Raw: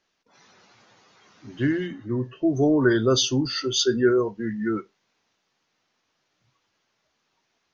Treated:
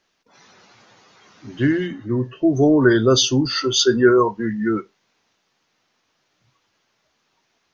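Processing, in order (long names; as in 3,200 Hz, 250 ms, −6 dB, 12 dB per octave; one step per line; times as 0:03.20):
0:03.51–0:04.47: parametric band 1,000 Hz +12 dB 0.63 octaves
level +5 dB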